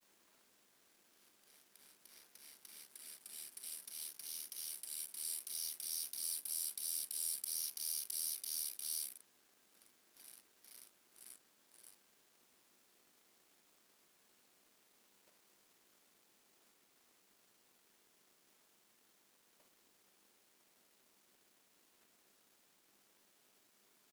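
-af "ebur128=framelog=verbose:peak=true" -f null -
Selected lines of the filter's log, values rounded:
Integrated loudness:
  I:         -40.9 LUFS
  Threshold: -56.3 LUFS
Loudness range:
  LRA:        22.4 LU
  Threshold: -65.8 LUFS
  LRA low:   -61.3 LUFS
  LRA high:  -38.8 LUFS
True peak:
  Peak:      -24.7 dBFS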